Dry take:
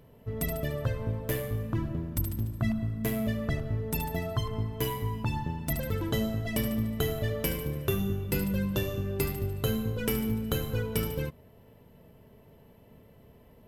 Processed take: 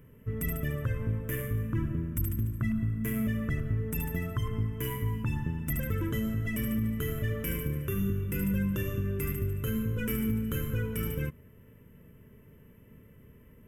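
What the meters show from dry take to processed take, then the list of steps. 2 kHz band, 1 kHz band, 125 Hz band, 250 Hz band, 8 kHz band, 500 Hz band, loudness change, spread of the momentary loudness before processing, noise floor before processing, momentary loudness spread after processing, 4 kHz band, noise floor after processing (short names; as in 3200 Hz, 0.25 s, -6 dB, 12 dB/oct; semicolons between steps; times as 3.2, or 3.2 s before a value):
-0.5 dB, -6.5 dB, +0.5 dB, 0.0 dB, -3.5 dB, -5.0 dB, -0.5 dB, 3 LU, -56 dBFS, 3 LU, -7.5 dB, -56 dBFS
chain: limiter -22.5 dBFS, peak gain reduction 8 dB; fixed phaser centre 1800 Hz, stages 4; gain +2.5 dB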